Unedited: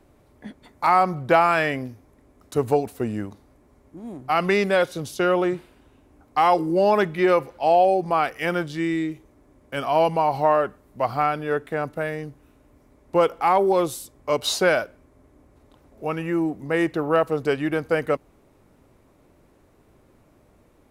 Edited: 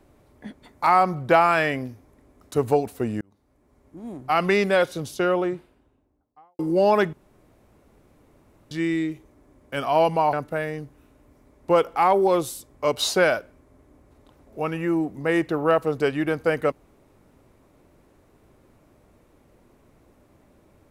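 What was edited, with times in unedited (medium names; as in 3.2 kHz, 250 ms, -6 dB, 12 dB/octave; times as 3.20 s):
3.21–4.06 s: fade in
4.89–6.59 s: studio fade out
7.13–8.71 s: room tone
10.33–11.78 s: delete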